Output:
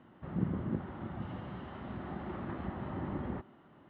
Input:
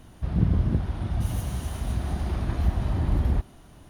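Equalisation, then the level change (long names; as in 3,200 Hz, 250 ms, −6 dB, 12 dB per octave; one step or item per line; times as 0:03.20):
high-frequency loss of the air 240 metres
loudspeaker in its box 280–2,600 Hz, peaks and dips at 290 Hz −4 dB, 450 Hz −6 dB, 680 Hz −9 dB, 1,000 Hz −4 dB, 1,600 Hz −5 dB, 2,400 Hz −9 dB
+1.5 dB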